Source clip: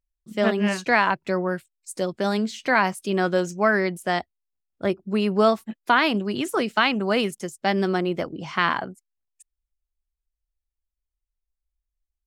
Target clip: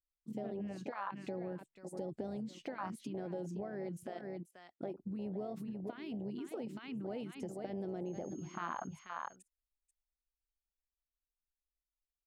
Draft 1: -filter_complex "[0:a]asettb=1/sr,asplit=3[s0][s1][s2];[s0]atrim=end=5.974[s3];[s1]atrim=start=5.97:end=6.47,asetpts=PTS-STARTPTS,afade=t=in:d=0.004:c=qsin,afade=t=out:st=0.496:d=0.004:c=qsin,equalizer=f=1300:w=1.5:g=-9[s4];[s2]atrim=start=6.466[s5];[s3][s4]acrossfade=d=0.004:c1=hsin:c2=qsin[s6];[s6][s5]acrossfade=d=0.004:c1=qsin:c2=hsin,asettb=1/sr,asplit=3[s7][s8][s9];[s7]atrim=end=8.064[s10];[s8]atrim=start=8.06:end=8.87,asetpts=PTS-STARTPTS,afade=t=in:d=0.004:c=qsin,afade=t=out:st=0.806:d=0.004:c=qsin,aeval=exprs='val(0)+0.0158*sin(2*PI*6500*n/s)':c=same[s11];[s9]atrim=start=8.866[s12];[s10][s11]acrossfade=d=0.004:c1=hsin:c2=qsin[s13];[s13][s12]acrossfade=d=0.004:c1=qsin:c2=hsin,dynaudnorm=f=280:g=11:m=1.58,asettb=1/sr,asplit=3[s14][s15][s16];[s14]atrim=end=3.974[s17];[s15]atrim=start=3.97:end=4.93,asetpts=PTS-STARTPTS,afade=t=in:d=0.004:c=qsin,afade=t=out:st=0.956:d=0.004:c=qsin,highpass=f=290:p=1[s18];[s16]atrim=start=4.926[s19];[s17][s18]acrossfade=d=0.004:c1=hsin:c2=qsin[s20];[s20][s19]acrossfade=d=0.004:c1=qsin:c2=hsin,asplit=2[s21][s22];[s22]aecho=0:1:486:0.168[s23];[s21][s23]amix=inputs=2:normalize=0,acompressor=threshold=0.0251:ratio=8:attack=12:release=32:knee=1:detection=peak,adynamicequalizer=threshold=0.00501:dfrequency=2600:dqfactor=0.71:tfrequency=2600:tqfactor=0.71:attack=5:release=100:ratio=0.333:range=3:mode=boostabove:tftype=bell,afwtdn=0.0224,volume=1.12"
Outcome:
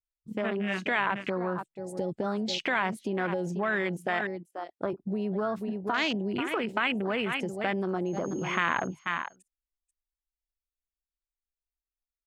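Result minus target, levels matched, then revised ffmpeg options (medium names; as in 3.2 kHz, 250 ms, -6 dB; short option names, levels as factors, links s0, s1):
compression: peak gain reduction -9 dB
-filter_complex "[0:a]asettb=1/sr,asplit=3[s0][s1][s2];[s0]atrim=end=5.974[s3];[s1]atrim=start=5.97:end=6.47,asetpts=PTS-STARTPTS,afade=t=in:d=0.004:c=qsin,afade=t=out:st=0.496:d=0.004:c=qsin,equalizer=f=1300:w=1.5:g=-9[s4];[s2]atrim=start=6.466[s5];[s3][s4]acrossfade=d=0.004:c1=hsin:c2=qsin[s6];[s6][s5]acrossfade=d=0.004:c1=qsin:c2=hsin,asettb=1/sr,asplit=3[s7][s8][s9];[s7]atrim=end=8.064[s10];[s8]atrim=start=8.06:end=8.87,asetpts=PTS-STARTPTS,afade=t=in:d=0.004:c=qsin,afade=t=out:st=0.806:d=0.004:c=qsin,aeval=exprs='val(0)+0.0158*sin(2*PI*6500*n/s)':c=same[s11];[s9]atrim=start=8.866[s12];[s10][s11]acrossfade=d=0.004:c1=hsin:c2=qsin[s13];[s13][s12]acrossfade=d=0.004:c1=qsin:c2=hsin,dynaudnorm=f=280:g=11:m=1.58,asettb=1/sr,asplit=3[s14][s15][s16];[s14]atrim=end=3.974[s17];[s15]atrim=start=3.97:end=4.93,asetpts=PTS-STARTPTS,afade=t=in:d=0.004:c=qsin,afade=t=out:st=0.956:d=0.004:c=qsin,highpass=f=290:p=1[s18];[s16]atrim=start=4.926[s19];[s17][s18]acrossfade=d=0.004:c1=hsin:c2=qsin[s20];[s20][s19]acrossfade=d=0.004:c1=qsin:c2=hsin,asplit=2[s21][s22];[s22]aecho=0:1:486:0.168[s23];[s21][s23]amix=inputs=2:normalize=0,acompressor=threshold=0.0075:ratio=8:attack=12:release=32:knee=1:detection=peak,adynamicequalizer=threshold=0.00501:dfrequency=2600:dqfactor=0.71:tfrequency=2600:tqfactor=0.71:attack=5:release=100:ratio=0.333:range=3:mode=boostabove:tftype=bell,afwtdn=0.0224,volume=1.12"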